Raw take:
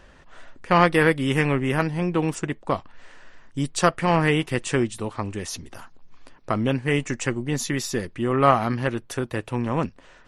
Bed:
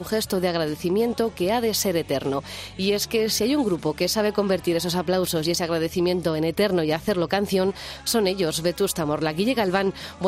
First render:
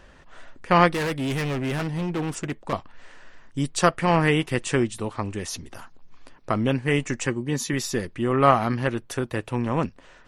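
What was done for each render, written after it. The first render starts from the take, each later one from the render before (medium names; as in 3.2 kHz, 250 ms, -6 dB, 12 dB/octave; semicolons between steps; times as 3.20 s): 0.91–2.73 s: hard clipper -23.5 dBFS; 7.27–7.73 s: comb of notches 690 Hz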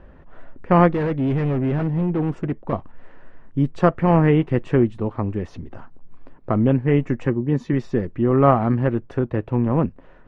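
low-pass 2.4 kHz 12 dB/octave; tilt shelf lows +7 dB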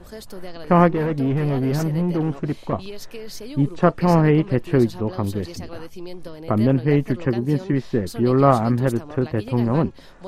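add bed -14 dB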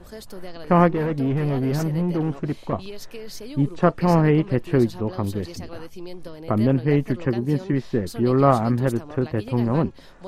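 trim -1.5 dB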